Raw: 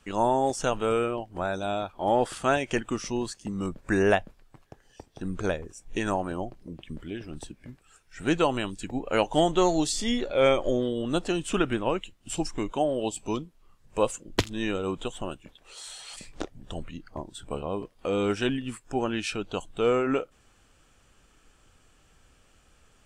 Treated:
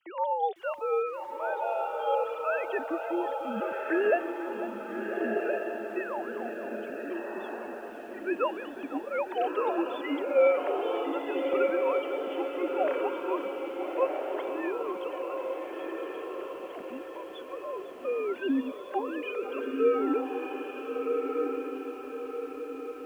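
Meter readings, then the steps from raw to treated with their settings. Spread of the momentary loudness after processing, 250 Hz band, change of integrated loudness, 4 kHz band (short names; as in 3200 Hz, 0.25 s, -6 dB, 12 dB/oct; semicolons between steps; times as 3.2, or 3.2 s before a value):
11 LU, -4.0 dB, -3.0 dB, -12.5 dB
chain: sine-wave speech; diffused feedback echo 1.345 s, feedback 45%, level -3 dB; lo-fi delay 0.499 s, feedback 80%, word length 8-bit, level -14.5 dB; gain -4.5 dB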